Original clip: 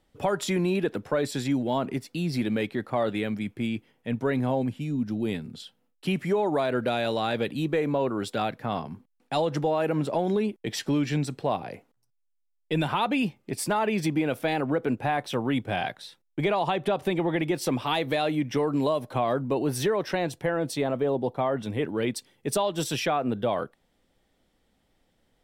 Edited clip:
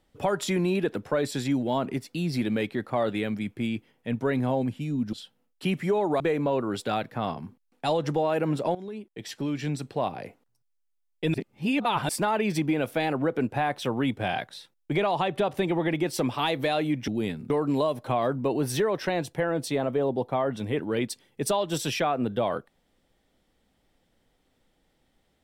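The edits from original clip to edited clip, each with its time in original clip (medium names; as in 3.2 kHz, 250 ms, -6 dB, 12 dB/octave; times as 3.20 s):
5.13–5.55 s: move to 18.56 s
6.62–7.68 s: delete
10.23–11.70 s: fade in, from -16 dB
12.82–13.57 s: reverse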